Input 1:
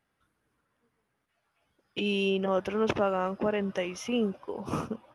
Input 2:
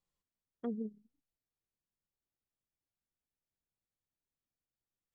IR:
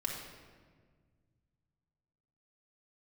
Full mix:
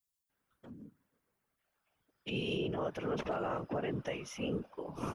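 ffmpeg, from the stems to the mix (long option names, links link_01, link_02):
-filter_complex "[0:a]asoftclip=type=hard:threshold=-16.5dB,adelay=300,volume=-0.5dB[link_01];[1:a]aecho=1:1:5.6:0.72,crystalizer=i=6:c=0,volume=32dB,asoftclip=hard,volume=-32dB,volume=-8dB[link_02];[link_01][link_02]amix=inputs=2:normalize=0,afftfilt=real='hypot(re,im)*cos(2*PI*random(0))':imag='hypot(re,im)*sin(2*PI*random(1))':win_size=512:overlap=0.75,alimiter=level_in=2dB:limit=-24dB:level=0:latency=1:release=45,volume=-2dB"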